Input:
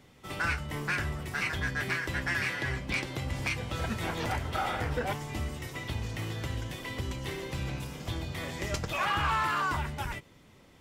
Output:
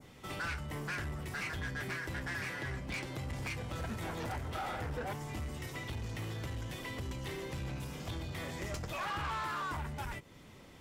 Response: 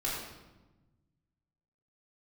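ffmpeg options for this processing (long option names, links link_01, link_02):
-filter_complex "[0:a]adynamicequalizer=threshold=0.00447:dfrequency=3200:dqfactor=0.82:tfrequency=3200:tqfactor=0.82:attack=5:release=100:ratio=0.375:range=3:mode=cutabove:tftype=bell,asplit=2[link_01][link_02];[link_02]acompressor=threshold=-46dB:ratio=6,volume=2dB[link_03];[link_01][link_03]amix=inputs=2:normalize=0,asoftclip=type=tanh:threshold=-29dB,volume=-4.5dB"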